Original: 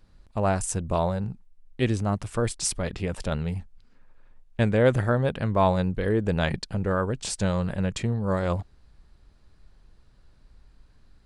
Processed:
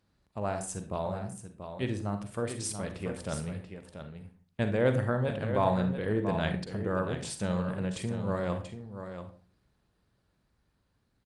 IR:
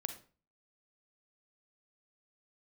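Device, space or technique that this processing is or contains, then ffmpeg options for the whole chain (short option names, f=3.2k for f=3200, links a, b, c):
far-field microphone of a smart speaker: -filter_complex "[0:a]aecho=1:1:684:0.355[a];[1:a]atrim=start_sample=2205[b];[a][b]afir=irnorm=-1:irlink=0,highpass=94,dynaudnorm=f=460:g=11:m=3dB,volume=-7.5dB" -ar 48000 -c:a libopus -b:a 48k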